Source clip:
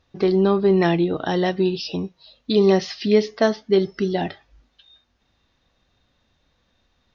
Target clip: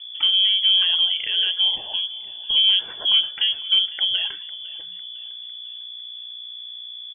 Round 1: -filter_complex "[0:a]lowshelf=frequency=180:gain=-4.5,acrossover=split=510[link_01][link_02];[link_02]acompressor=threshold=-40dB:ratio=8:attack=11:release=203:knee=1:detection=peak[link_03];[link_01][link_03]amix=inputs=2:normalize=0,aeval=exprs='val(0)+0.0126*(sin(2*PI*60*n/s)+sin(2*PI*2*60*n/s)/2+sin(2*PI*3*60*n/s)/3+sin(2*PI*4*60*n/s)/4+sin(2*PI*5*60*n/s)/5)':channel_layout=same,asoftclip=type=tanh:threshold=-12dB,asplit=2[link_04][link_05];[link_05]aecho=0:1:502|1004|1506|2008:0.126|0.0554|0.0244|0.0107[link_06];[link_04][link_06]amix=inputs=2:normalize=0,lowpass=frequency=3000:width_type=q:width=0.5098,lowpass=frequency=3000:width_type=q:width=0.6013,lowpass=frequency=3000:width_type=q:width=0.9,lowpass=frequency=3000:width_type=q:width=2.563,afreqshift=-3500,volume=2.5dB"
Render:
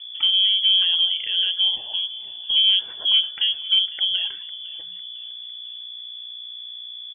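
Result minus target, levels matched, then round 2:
downward compressor: peak gain reduction +5.5 dB
-filter_complex "[0:a]lowshelf=frequency=180:gain=-4.5,acrossover=split=510[link_01][link_02];[link_02]acompressor=threshold=-33.5dB:ratio=8:attack=11:release=203:knee=1:detection=peak[link_03];[link_01][link_03]amix=inputs=2:normalize=0,aeval=exprs='val(0)+0.0126*(sin(2*PI*60*n/s)+sin(2*PI*2*60*n/s)/2+sin(2*PI*3*60*n/s)/3+sin(2*PI*4*60*n/s)/4+sin(2*PI*5*60*n/s)/5)':channel_layout=same,asoftclip=type=tanh:threshold=-12dB,asplit=2[link_04][link_05];[link_05]aecho=0:1:502|1004|1506|2008:0.126|0.0554|0.0244|0.0107[link_06];[link_04][link_06]amix=inputs=2:normalize=0,lowpass=frequency=3000:width_type=q:width=0.5098,lowpass=frequency=3000:width_type=q:width=0.6013,lowpass=frequency=3000:width_type=q:width=0.9,lowpass=frequency=3000:width_type=q:width=2.563,afreqshift=-3500,volume=2.5dB"

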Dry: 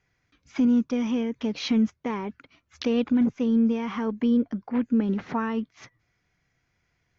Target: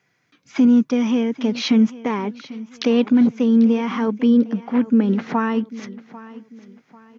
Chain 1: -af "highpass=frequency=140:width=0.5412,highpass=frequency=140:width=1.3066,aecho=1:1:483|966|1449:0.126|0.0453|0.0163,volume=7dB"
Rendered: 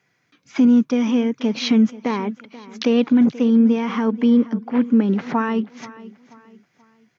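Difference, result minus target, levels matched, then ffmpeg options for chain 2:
echo 311 ms early
-af "highpass=frequency=140:width=0.5412,highpass=frequency=140:width=1.3066,aecho=1:1:794|1588|2382:0.126|0.0453|0.0163,volume=7dB"

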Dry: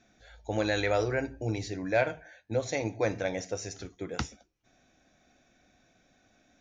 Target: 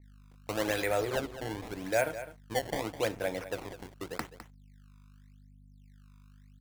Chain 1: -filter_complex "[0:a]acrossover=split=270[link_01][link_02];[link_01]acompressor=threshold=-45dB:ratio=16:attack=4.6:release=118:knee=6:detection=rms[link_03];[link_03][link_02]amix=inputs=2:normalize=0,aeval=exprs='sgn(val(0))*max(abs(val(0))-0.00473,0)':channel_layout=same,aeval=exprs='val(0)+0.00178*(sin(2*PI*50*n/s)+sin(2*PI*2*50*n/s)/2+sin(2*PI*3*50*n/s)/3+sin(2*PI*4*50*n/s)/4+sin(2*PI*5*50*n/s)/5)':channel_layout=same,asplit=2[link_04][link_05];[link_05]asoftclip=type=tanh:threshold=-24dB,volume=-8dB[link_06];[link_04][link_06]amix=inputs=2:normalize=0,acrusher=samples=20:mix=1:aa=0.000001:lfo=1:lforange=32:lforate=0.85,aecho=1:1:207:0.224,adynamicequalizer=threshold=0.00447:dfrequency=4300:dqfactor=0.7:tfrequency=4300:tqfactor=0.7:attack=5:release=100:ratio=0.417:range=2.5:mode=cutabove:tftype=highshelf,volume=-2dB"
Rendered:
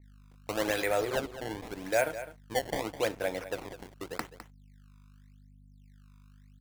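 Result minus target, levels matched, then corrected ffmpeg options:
downward compressor: peak gain reduction +5.5 dB; soft clipping: distortion −8 dB
-filter_complex "[0:a]acrossover=split=270[link_01][link_02];[link_01]acompressor=threshold=-39dB:ratio=16:attack=4.6:release=118:knee=6:detection=rms[link_03];[link_03][link_02]amix=inputs=2:normalize=0,aeval=exprs='sgn(val(0))*max(abs(val(0))-0.00473,0)':channel_layout=same,aeval=exprs='val(0)+0.00178*(sin(2*PI*50*n/s)+sin(2*PI*2*50*n/s)/2+sin(2*PI*3*50*n/s)/3+sin(2*PI*4*50*n/s)/4+sin(2*PI*5*50*n/s)/5)':channel_layout=same,asplit=2[link_04][link_05];[link_05]asoftclip=type=tanh:threshold=-35dB,volume=-8dB[link_06];[link_04][link_06]amix=inputs=2:normalize=0,acrusher=samples=20:mix=1:aa=0.000001:lfo=1:lforange=32:lforate=0.85,aecho=1:1:207:0.224,adynamicequalizer=threshold=0.00447:dfrequency=4300:dqfactor=0.7:tfrequency=4300:tqfactor=0.7:attack=5:release=100:ratio=0.417:range=2.5:mode=cutabove:tftype=highshelf,volume=-2dB"

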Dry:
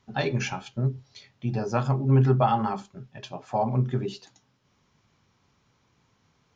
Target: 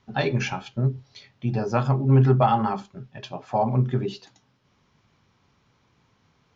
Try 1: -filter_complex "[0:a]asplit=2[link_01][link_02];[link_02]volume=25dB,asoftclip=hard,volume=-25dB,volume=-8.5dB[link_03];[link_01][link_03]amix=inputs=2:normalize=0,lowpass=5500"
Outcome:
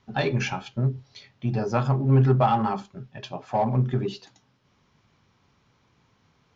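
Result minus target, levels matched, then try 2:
gain into a clipping stage and back: distortion +16 dB
-filter_complex "[0:a]asplit=2[link_01][link_02];[link_02]volume=14.5dB,asoftclip=hard,volume=-14.5dB,volume=-8.5dB[link_03];[link_01][link_03]amix=inputs=2:normalize=0,lowpass=5500"

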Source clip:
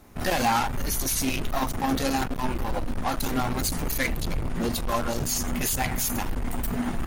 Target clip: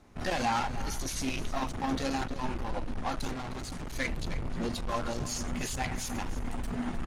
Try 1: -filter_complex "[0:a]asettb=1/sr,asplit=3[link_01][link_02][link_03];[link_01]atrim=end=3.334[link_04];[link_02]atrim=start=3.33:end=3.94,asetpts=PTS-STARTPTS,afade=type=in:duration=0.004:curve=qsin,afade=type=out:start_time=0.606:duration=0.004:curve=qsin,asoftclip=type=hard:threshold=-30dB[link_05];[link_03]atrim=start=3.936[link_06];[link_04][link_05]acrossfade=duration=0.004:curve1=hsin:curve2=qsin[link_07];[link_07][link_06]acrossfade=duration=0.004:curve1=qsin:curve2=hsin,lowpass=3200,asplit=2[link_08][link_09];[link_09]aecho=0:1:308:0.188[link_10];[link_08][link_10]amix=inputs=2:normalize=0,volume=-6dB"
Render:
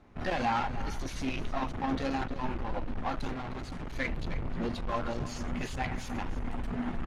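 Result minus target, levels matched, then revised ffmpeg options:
8,000 Hz band −10.5 dB
-filter_complex "[0:a]asettb=1/sr,asplit=3[link_01][link_02][link_03];[link_01]atrim=end=3.334[link_04];[link_02]atrim=start=3.33:end=3.94,asetpts=PTS-STARTPTS,afade=type=in:duration=0.004:curve=qsin,afade=type=out:start_time=0.606:duration=0.004:curve=qsin,asoftclip=type=hard:threshold=-30dB[link_05];[link_03]atrim=start=3.936[link_06];[link_04][link_05]acrossfade=duration=0.004:curve1=hsin:curve2=qsin[link_07];[link_07][link_06]acrossfade=duration=0.004:curve1=qsin:curve2=hsin,lowpass=7100,asplit=2[link_08][link_09];[link_09]aecho=0:1:308:0.188[link_10];[link_08][link_10]amix=inputs=2:normalize=0,volume=-6dB"

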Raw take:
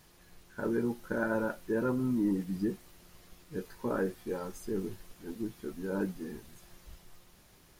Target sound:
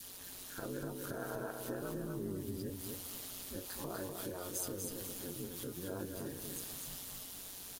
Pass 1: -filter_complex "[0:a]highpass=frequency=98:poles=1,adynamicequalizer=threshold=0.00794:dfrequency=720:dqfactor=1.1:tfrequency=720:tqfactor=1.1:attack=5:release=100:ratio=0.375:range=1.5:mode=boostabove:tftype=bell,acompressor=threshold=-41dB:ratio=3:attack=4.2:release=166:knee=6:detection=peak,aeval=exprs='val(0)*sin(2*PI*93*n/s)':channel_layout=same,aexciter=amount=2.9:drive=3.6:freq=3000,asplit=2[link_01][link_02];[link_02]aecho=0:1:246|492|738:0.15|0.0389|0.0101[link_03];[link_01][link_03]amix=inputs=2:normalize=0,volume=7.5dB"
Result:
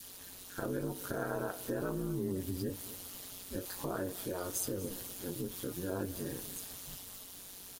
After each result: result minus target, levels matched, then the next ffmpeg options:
echo-to-direct −12 dB; downward compressor: peak gain reduction −5.5 dB
-filter_complex "[0:a]highpass=frequency=98:poles=1,adynamicequalizer=threshold=0.00794:dfrequency=720:dqfactor=1.1:tfrequency=720:tqfactor=1.1:attack=5:release=100:ratio=0.375:range=1.5:mode=boostabove:tftype=bell,acompressor=threshold=-41dB:ratio=3:attack=4.2:release=166:knee=6:detection=peak,aeval=exprs='val(0)*sin(2*PI*93*n/s)':channel_layout=same,aexciter=amount=2.9:drive=3.6:freq=3000,asplit=2[link_01][link_02];[link_02]aecho=0:1:246|492|738|984:0.596|0.155|0.0403|0.0105[link_03];[link_01][link_03]amix=inputs=2:normalize=0,volume=7.5dB"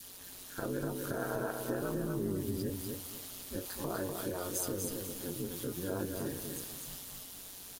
downward compressor: peak gain reduction −5.5 dB
-filter_complex "[0:a]highpass=frequency=98:poles=1,adynamicequalizer=threshold=0.00794:dfrequency=720:dqfactor=1.1:tfrequency=720:tqfactor=1.1:attack=5:release=100:ratio=0.375:range=1.5:mode=boostabove:tftype=bell,acompressor=threshold=-49.5dB:ratio=3:attack=4.2:release=166:knee=6:detection=peak,aeval=exprs='val(0)*sin(2*PI*93*n/s)':channel_layout=same,aexciter=amount=2.9:drive=3.6:freq=3000,asplit=2[link_01][link_02];[link_02]aecho=0:1:246|492|738|984:0.596|0.155|0.0403|0.0105[link_03];[link_01][link_03]amix=inputs=2:normalize=0,volume=7.5dB"

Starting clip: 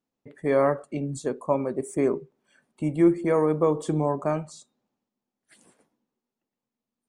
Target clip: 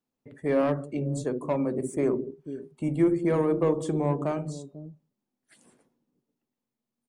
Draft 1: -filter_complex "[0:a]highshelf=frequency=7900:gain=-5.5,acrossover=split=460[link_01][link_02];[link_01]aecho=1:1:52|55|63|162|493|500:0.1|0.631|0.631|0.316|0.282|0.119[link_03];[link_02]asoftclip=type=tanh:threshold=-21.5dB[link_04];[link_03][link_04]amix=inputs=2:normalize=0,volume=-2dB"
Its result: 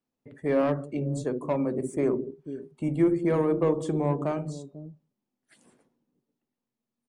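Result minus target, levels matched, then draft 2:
8,000 Hz band −2.5 dB
-filter_complex "[0:a]acrossover=split=460[link_01][link_02];[link_01]aecho=1:1:52|55|63|162|493|500:0.1|0.631|0.631|0.316|0.282|0.119[link_03];[link_02]asoftclip=type=tanh:threshold=-21.5dB[link_04];[link_03][link_04]amix=inputs=2:normalize=0,volume=-2dB"

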